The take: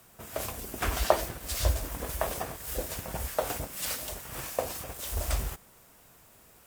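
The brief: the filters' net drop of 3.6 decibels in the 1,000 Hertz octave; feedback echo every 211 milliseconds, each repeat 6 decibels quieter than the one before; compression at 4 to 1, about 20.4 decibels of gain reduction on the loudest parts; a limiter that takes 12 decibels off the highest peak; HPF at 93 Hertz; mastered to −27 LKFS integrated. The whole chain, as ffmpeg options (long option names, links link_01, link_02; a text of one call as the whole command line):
ffmpeg -i in.wav -af "highpass=93,equalizer=frequency=1000:width_type=o:gain=-5,acompressor=threshold=-47dB:ratio=4,alimiter=level_in=14.5dB:limit=-24dB:level=0:latency=1,volume=-14.5dB,aecho=1:1:211|422|633|844|1055|1266:0.501|0.251|0.125|0.0626|0.0313|0.0157,volume=21dB" out.wav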